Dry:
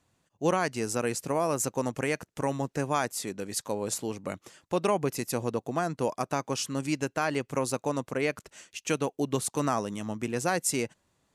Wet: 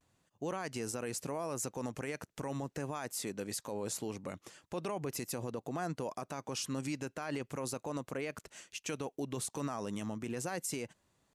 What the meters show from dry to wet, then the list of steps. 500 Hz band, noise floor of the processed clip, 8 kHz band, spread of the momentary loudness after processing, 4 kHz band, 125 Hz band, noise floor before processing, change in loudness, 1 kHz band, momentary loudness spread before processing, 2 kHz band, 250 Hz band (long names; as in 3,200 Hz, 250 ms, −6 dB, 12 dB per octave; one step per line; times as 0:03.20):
−10.0 dB, −79 dBFS, −7.0 dB, 5 LU, −7.0 dB, −7.5 dB, −76 dBFS, −9.0 dB, −11.0 dB, 7 LU, −10.0 dB, −8.0 dB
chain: brickwall limiter −25.5 dBFS, peak gain reduction 11.5 dB
pitch vibrato 0.4 Hz 34 cents
level −2.5 dB